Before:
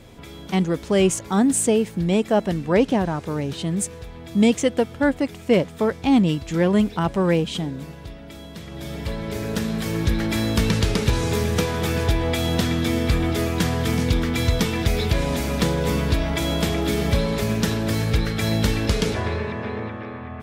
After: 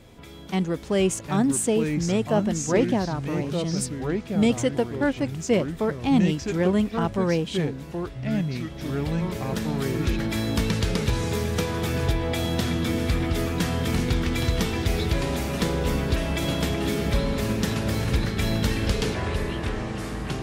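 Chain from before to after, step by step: ever faster or slower copies 622 ms, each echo -4 st, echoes 2, each echo -6 dB; trim -4 dB

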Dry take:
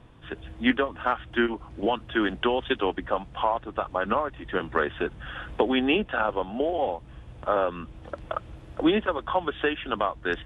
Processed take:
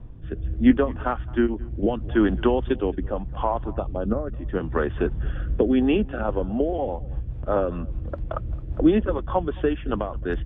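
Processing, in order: tilt EQ -4 dB/octave; 3.73–4.27 s: touch-sensitive phaser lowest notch 470 Hz, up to 2.9 kHz, full sweep at -17.5 dBFS; delay 218 ms -22.5 dB; rotary cabinet horn 0.75 Hz, later 5 Hz, at 5.63 s

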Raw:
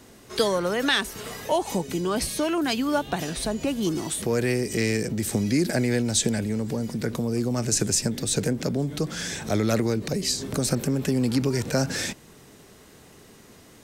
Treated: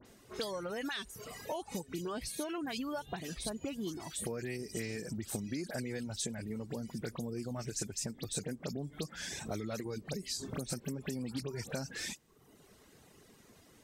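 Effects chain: reverb removal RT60 0.9 s; compression, threshold -27 dBFS, peak gain reduction 10 dB; phase dispersion highs, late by 57 ms, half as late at 3 kHz; trim -8 dB

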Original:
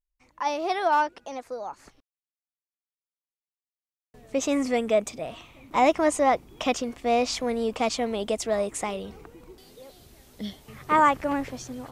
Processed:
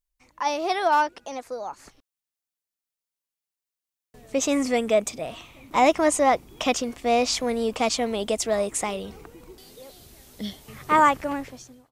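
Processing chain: fade out at the end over 0.89 s; treble shelf 4 kHz +5.5 dB; trim +1.5 dB

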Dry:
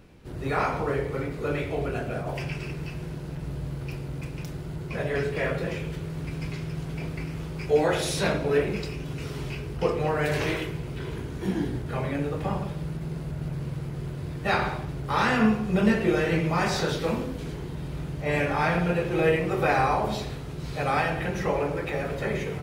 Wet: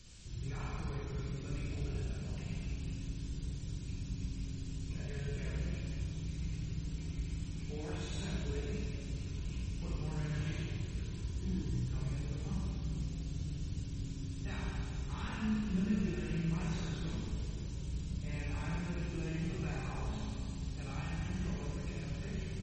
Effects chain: in parallel at -2.5 dB: peak limiter -18 dBFS, peak gain reduction 7.5 dB; on the sum: graphic EQ with 31 bands 250 Hz -10 dB, 500 Hz -10 dB, 1 kHz +8 dB, 5 kHz -11 dB, 10 kHz -8 dB; word length cut 6-bit, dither triangular; amplifier tone stack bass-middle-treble 10-0-1; band-stop 2 kHz, Q 14; on a send: frequency-shifting echo 441 ms, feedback 39%, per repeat +130 Hz, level -20 dB; on the sum: Schroeder reverb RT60 1.8 s, combs from 33 ms, DRR -2 dB; MP3 32 kbps 44.1 kHz

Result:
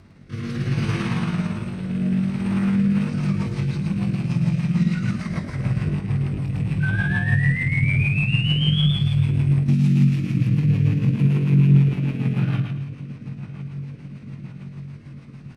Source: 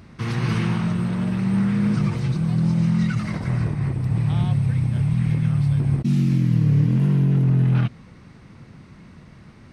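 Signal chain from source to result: rattle on loud lows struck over -19 dBFS, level -29 dBFS; on a send: feedback echo behind a low-pass 642 ms, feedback 69%, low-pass 3.9 kHz, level -17 dB; on the sum: painted sound rise, 4.26–5.58 s, 1.5–3.5 kHz -25 dBFS; feedback delay 65 ms, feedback 45%, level -4 dB; granular stretch 1.6×, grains 112 ms; rotary cabinet horn 0.65 Hz, later 6.7 Hz, at 2.52 s

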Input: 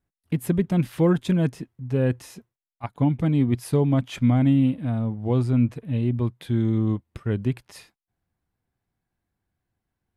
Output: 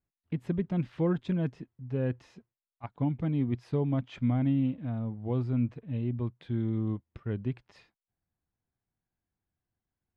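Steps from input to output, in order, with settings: distance through air 170 m; trim -8 dB

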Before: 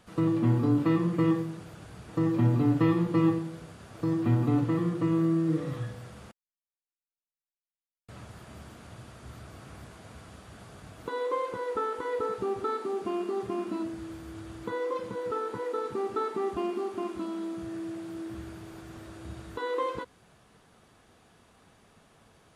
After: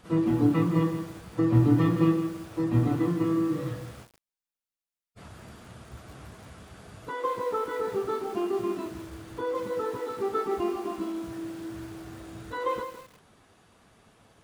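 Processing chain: plain phase-vocoder stretch 0.64×; bit-crushed delay 162 ms, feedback 35%, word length 8-bit, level -9 dB; trim +4 dB

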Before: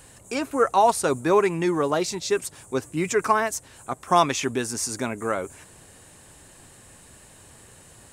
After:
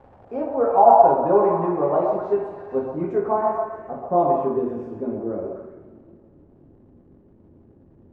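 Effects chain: repeats whose band climbs or falls 127 ms, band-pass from 800 Hz, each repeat 0.7 oct, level 0 dB; two-slope reverb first 0.57 s, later 2.9 s, from -17 dB, DRR -3.5 dB; crackle 300 per s -25 dBFS; low-pass sweep 710 Hz -> 320 Hz, 2.86–6.40 s; dynamic bell 5.8 kHz, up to -5 dB, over -48 dBFS, Q 2.6; trim -6 dB

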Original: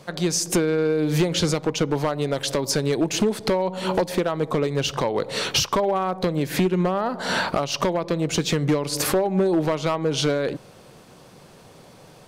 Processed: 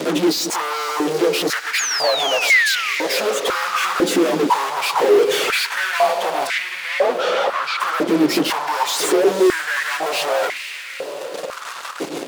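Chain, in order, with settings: frequency axis rescaled in octaves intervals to 92%; reverb removal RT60 2 s; in parallel at +3 dB: compression, threshold -36 dBFS, peak gain reduction 17.5 dB; on the sum: peak limiter -19.5 dBFS, peak gain reduction 9.5 dB; rotary cabinet horn 6.3 Hz; 9.24–9.86 s: phase dispersion highs, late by 138 ms, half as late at 2.2 kHz; fuzz box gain 47 dB, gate -49 dBFS; 1.78–2.94 s: painted sound fall 1.1–7 kHz -16 dBFS; 6.47–7.80 s: distance through air 140 m; on a send: echo that smears into a reverb 477 ms, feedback 67%, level -11 dB; on the sum: step-sequenced high-pass 2 Hz 300–2100 Hz; trim -7.5 dB

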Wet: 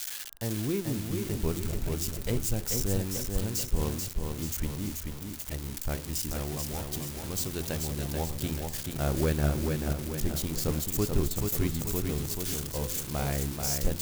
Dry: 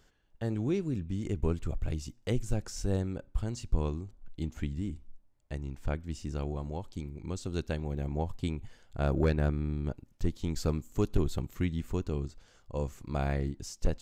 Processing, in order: zero-crossing glitches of -25 dBFS; de-hum 85.43 Hz, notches 19; bit-crushed delay 435 ms, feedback 55%, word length 8-bit, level -4 dB

